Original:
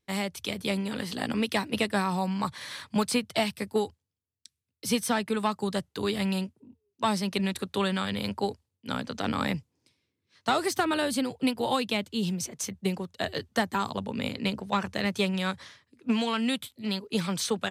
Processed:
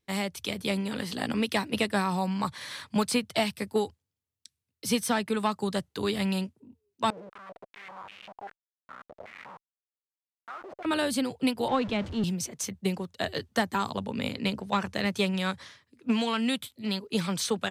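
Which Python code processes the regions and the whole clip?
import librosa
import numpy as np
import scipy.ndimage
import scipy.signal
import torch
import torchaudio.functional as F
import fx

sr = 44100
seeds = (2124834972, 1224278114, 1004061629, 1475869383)

y = fx.chain(x, sr, fx.schmitt(flips_db=-29.5),
    fx.filter_held_bandpass(hz=5.1, low_hz=470.0, high_hz=2700.0), at=(7.1, 10.85))
y = fx.chain(y, sr, fx.zero_step(step_db=-30.0),
    fx.spacing_loss(db_at_10k=24),
    fx.band_widen(depth_pct=70), at=(11.68, 12.24))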